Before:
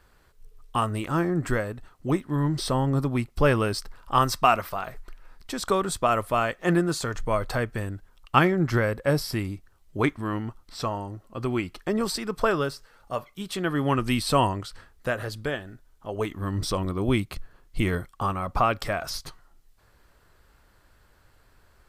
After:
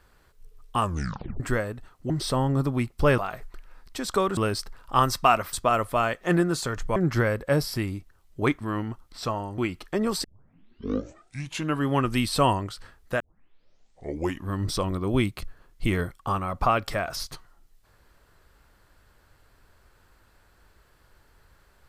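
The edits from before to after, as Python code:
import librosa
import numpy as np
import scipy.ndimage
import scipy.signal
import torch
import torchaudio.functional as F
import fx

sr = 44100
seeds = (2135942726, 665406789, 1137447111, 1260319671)

y = fx.edit(x, sr, fx.tape_stop(start_s=0.81, length_s=0.59),
    fx.cut(start_s=2.1, length_s=0.38),
    fx.move(start_s=3.56, length_s=1.16, to_s=5.91),
    fx.cut(start_s=7.34, length_s=1.19),
    fx.cut(start_s=11.15, length_s=0.37),
    fx.tape_start(start_s=12.18, length_s=1.65),
    fx.tape_start(start_s=15.14, length_s=1.29), tone=tone)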